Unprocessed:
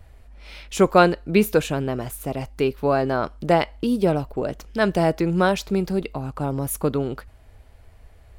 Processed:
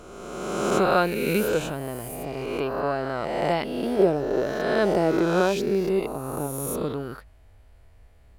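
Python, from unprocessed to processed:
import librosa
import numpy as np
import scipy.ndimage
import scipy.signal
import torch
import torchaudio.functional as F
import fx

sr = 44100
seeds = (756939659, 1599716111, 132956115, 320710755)

y = fx.spec_swells(x, sr, rise_s=1.79)
y = fx.peak_eq(y, sr, hz=400.0, db=8.5, octaves=1.1, at=(3.99, 6.47))
y = F.gain(torch.from_numpy(y), -8.5).numpy()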